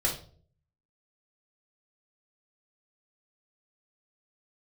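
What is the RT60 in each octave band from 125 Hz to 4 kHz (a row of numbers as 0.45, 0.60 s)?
0.85, 0.65, 0.55, 0.40, 0.30, 0.35 s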